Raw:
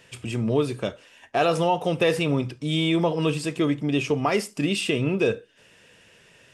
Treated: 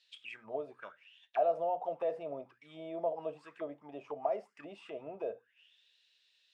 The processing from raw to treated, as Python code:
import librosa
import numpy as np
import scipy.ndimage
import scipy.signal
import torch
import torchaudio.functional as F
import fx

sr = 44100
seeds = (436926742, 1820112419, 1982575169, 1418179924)

y = fx.hum_notches(x, sr, base_hz=60, count=4)
y = fx.auto_wah(y, sr, base_hz=640.0, top_hz=4200.0, q=9.6, full_db=-19.5, direction='down')